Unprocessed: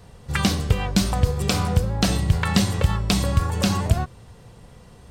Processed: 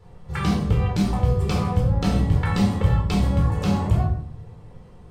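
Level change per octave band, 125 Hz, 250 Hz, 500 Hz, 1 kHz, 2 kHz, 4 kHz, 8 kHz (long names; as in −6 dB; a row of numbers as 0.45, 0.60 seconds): +1.5, +1.0, 0.0, −1.0, −5.0, −9.0, −12.0 decibels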